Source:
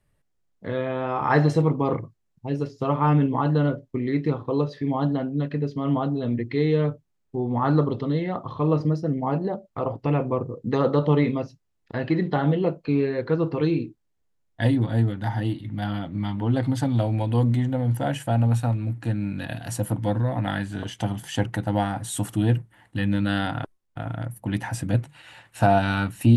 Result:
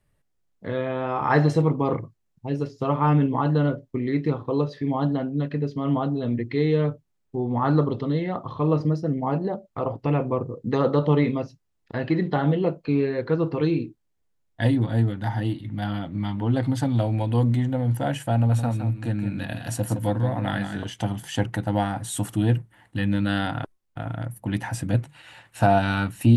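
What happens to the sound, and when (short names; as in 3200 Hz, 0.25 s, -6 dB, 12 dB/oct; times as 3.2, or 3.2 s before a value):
18.33–20.77 echo 0.165 s -8.5 dB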